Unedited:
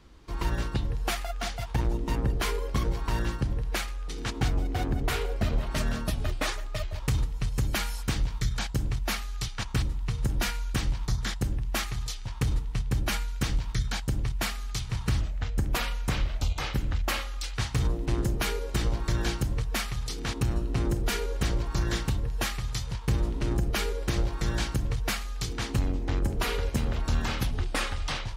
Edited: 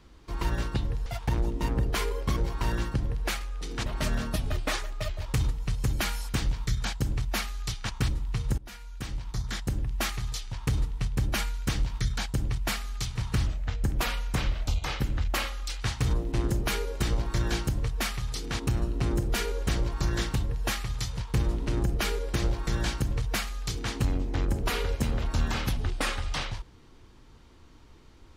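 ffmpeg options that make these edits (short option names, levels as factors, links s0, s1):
-filter_complex "[0:a]asplit=4[s0][s1][s2][s3];[s0]atrim=end=1.062[s4];[s1]atrim=start=1.528:end=4.332[s5];[s2]atrim=start=5.598:end=10.32,asetpts=PTS-STARTPTS,afade=t=out:st=4.718:d=0.004:c=hsin:silence=0.0749894[s6];[s3]atrim=start=10.32,asetpts=PTS-STARTPTS,afade=t=in:d=1.28:silence=0.0749894[s7];[s4][s5]acrossfade=d=0.004:c1=hsin:c2=hsin[s8];[s6][s7]concat=n=2:v=0:a=1[s9];[s8][s9]acrossfade=d=0.004:c1=hsin:c2=hsin"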